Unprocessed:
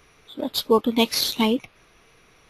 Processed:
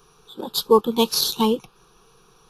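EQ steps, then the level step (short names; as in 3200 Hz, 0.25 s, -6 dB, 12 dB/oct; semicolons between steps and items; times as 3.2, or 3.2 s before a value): fixed phaser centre 410 Hz, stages 8; +4.0 dB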